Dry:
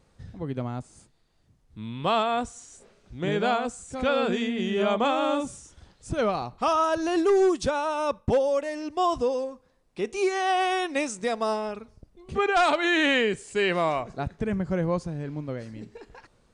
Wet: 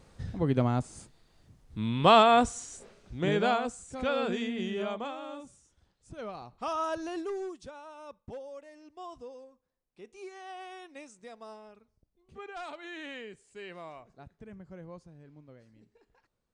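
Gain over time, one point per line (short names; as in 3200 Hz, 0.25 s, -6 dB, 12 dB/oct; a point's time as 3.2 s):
2.52 s +5 dB
3.93 s -5.5 dB
4.64 s -5.5 dB
5.22 s -16.5 dB
6.14 s -16.5 dB
6.9 s -7.5 dB
7.62 s -20 dB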